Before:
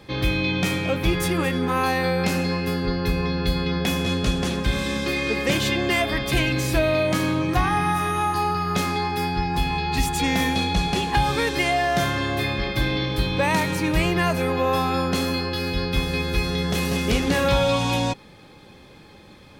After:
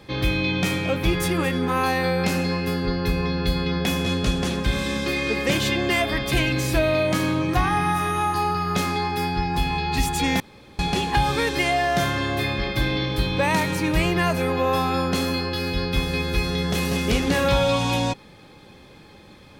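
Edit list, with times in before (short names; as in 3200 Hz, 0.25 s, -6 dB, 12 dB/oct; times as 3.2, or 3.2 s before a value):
10.4–10.79 room tone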